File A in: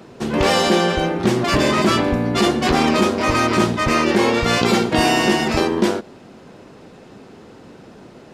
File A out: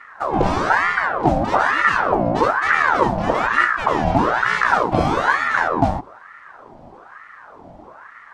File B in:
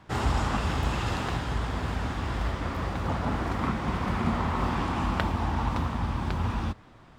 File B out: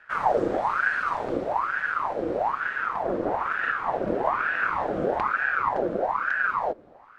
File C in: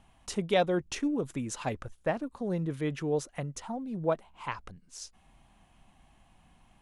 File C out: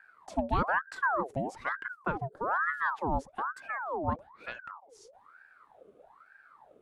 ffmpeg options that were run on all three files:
-filter_complex "[0:a]tiltshelf=f=710:g=9,acrossover=split=8600[s0][s1];[s1]acompressor=threshold=0.00158:ratio=4:attack=1:release=60[s2];[s0][s2]amix=inputs=2:normalize=0,aeval=exprs='val(0)*sin(2*PI*1000*n/s+1000*0.6/1.1*sin(2*PI*1.1*n/s))':c=same,volume=0.75"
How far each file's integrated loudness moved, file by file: -0.5 LU, +3.5 LU, 0.0 LU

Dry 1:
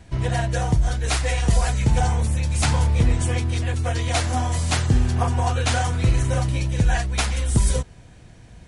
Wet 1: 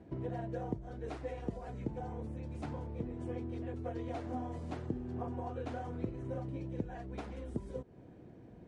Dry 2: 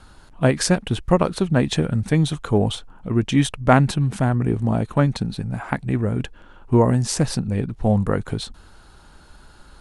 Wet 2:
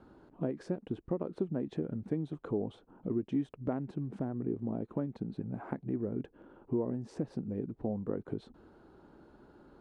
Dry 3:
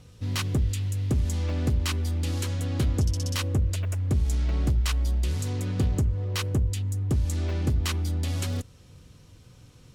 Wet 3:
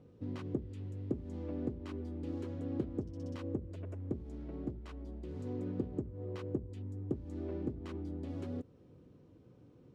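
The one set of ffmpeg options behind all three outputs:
-af "acompressor=threshold=0.0398:ratio=6,bandpass=f=340:t=q:w=1.6:csg=0,volume=1.26"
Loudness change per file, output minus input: -19.5 LU, -16.0 LU, -14.0 LU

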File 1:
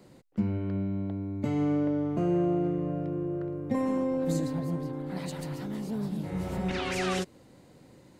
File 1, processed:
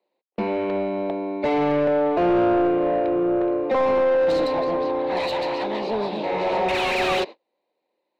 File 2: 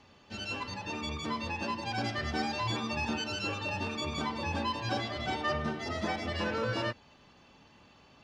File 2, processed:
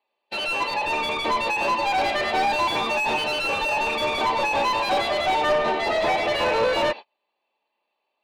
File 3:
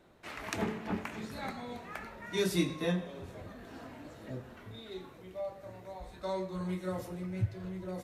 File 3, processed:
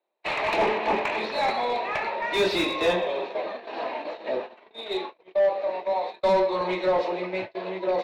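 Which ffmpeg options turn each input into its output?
-filter_complex "[0:a]highpass=f=270:w=0.5412,highpass=f=270:w=1.3066,equalizer=f=270:t=q:w=4:g=-9,equalizer=f=610:t=q:w=4:g=4,equalizer=f=910:t=q:w=4:g=5,equalizer=f=1400:t=q:w=4:g=-9,equalizer=f=2500:t=q:w=4:g=8,equalizer=f=4000:t=q:w=4:g=10,lowpass=f=4900:w=0.5412,lowpass=f=4900:w=1.3066,asplit=2[s0][s1];[s1]highpass=f=720:p=1,volume=15.8,asoftclip=type=tanh:threshold=0.158[s2];[s0][s2]amix=inputs=2:normalize=0,lowpass=f=1000:p=1,volume=0.501,agate=range=0.0141:threshold=0.0141:ratio=16:detection=peak,volume=1.88"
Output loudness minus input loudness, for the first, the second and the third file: +8.5 LU, +11.5 LU, +11.5 LU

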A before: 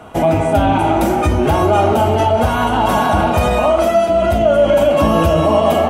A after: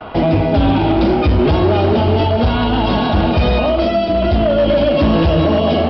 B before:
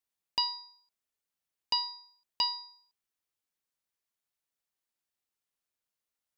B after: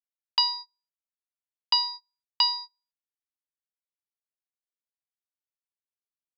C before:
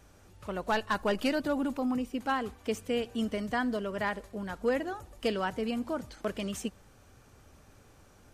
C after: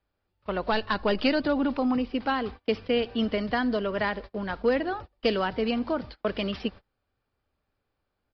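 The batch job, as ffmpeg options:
-filter_complex "[0:a]agate=range=0.0398:threshold=0.00631:ratio=16:detection=peak,equalizer=f=140:w=0.56:g=-4.5,acrossover=split=440|3000[s0][s1][s2];[s1]acompressor=threshold=0.0178:ratio=3[s3];[s0][s3][s2]amix=inputs=3:normalize=0,aresample=11025,asoftclip=type=hard:threshold=0.15,aresample=44100,volume=2.51"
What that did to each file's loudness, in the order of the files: -0.5 LU, +7.0 LU, +5.0 LU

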